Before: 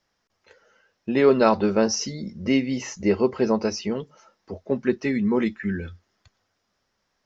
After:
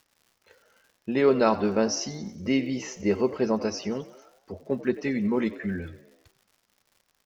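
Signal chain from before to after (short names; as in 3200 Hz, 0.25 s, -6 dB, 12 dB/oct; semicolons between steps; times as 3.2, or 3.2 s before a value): crackle 160/s -45 dBFS; frequency-shifting echo 92 ms, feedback 55%, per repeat +60 Hz, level -17 dB; gain -3.5 dB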